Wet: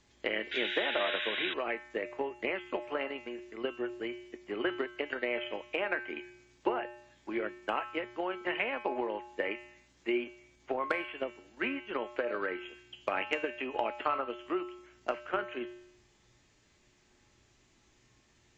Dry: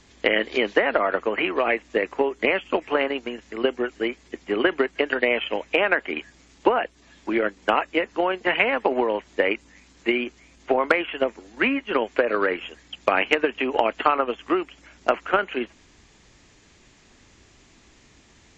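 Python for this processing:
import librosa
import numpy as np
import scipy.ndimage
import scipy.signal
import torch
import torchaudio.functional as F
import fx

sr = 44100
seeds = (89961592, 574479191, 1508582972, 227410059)

y = fx.comb_fb(x, sr, f0_hz=120.0, decay_s=0.76, harmonics='odd', damping=0.0, mix_pct=80)
y = fx.spec_paint(y, sr, seeds[0], shape='noise', start_s=0.51, length_s=1.03, low_hz=1400.0, high_hz=3900.0, level_db=-36.0)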